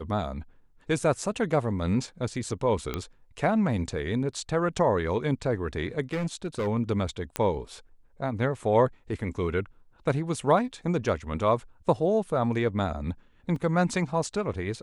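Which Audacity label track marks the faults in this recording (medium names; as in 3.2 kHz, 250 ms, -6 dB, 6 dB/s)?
2.940000	2.940000	pop -15 dBFS
6.130000	6.680000	clipped -24.5 dBFS
7.360000	7.360000	pop -12 dBFS
13.560000	13.560000	dropout 3 ms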